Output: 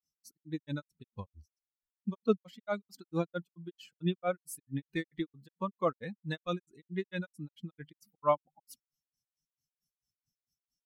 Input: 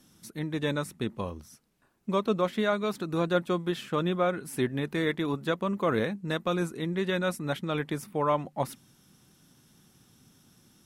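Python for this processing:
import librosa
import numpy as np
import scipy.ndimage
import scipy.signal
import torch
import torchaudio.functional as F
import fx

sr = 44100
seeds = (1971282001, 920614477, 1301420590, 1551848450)

y = fx.bin_expand(x, sr, power=2.0)
y = fx.granulator(y, sr, seeds[0], grain_ms=157.0, per_s=4.5, spray_ms=11.0, spread_st=0)
y = F.gain(torch.from_numpy(y), 3.0).numpy()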